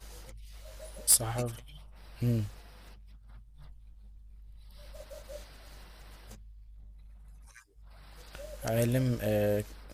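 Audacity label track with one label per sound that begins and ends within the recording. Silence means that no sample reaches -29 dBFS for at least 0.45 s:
1.080000	1.470000	sound
2.220000	2.440000	sound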